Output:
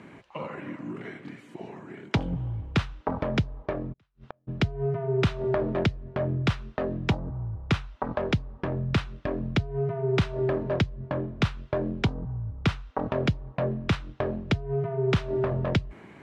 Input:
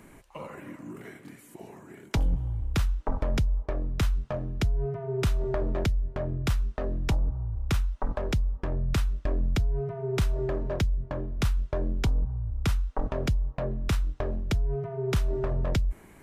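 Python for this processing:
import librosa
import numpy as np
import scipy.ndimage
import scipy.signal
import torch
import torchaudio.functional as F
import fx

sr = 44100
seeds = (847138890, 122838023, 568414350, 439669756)

y = scipy.signal.sosfilt(scipy.signal.cheby1(2, 1.0, [130.0, 3400.0], 'bandpass', fs=sr, output='sos'), x)
y = fx.gate_flip(y, sr, shuts_db=-34.0, range_db=-42, at=(3.92, 4.47), fade=0.02)
y = y * librosa.db_to_amplitude(5.5)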